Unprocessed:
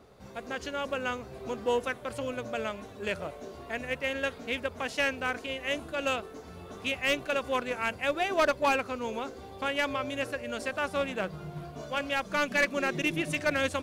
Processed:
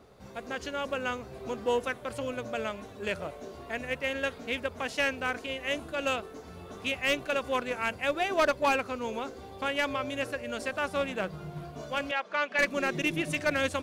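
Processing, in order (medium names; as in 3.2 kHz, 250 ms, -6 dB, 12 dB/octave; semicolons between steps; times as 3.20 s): 12.11–12.59 s: band-pass 500–3300 Hz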